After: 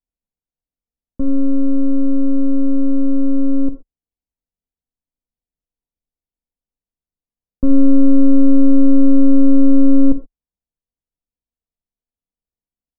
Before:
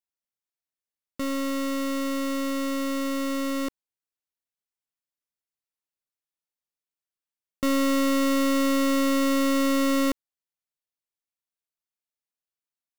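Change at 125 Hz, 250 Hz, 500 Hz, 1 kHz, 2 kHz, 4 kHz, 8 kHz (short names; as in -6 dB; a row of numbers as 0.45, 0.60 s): n/a, +11.5 dB, +2.0 dB, under -10 dB, under -25 dB, under -40 dB, under -40 dB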